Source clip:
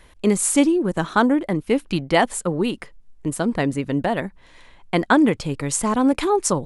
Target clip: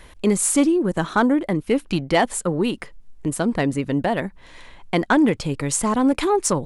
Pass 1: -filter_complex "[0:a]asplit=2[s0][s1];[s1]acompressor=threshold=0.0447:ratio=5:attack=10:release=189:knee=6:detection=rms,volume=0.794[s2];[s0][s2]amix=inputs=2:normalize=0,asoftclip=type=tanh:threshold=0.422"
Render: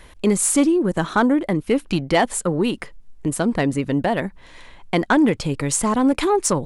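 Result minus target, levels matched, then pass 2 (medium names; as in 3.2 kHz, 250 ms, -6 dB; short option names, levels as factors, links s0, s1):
compression: peak gain reduction -8 dB
-filter_complex "[0:a]asplit=2[s0][s1];[s1]acompressor=threshold=0.0141:ratio=5:attack=10:release=189:knee=6:detection=rms,volume=0.794[s2];[s0][s2]amix=inputs=2:normalize=0,asoftclip=type=tanh:threshold=0.422"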